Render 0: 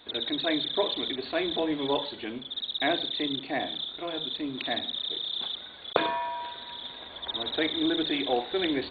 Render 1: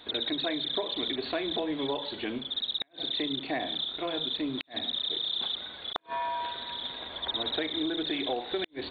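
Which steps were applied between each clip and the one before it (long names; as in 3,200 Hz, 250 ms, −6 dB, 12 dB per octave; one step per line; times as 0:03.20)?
downward compressor 20 to 1, threshold −30 dBFS, peak gain reduction 14 dB
gate with flip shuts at −20 dBFS, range −40 dB
level +3 dB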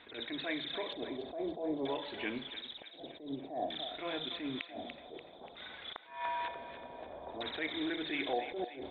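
auto-filter low-pass square 0.54 Hz 670–2,300 Hz
on a send: feedback echo with a high-pass in the loop 291 ms, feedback 53%, high-pass 760 Hz, level −9 dB
on the sum: level that may rise only so fast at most 120 dB per second
level −5.5 dB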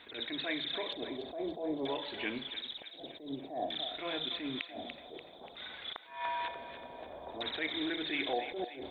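high-shelf EQ 4,000 Hz +8.5 dB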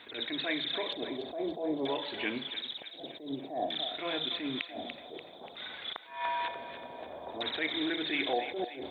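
high-pass filter 90 Hz
level +3 dB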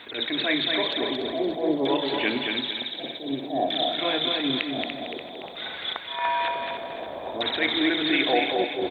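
repeating echo 227 ms, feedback 35%, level −4.5 dB
level +8 dB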